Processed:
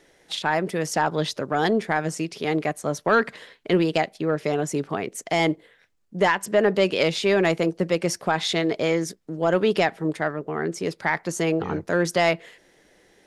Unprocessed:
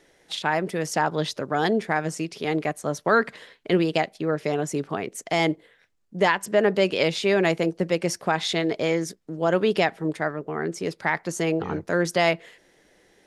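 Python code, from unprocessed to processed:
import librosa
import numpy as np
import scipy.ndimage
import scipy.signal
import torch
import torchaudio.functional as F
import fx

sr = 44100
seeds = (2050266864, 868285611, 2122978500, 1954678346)

y = 10.0 ** (-9.0 / 20.0) * np.tanh(x / 10.0 ** (-9.0 / 20.0))
y = y * librosa.db_to_amplitude(1.5)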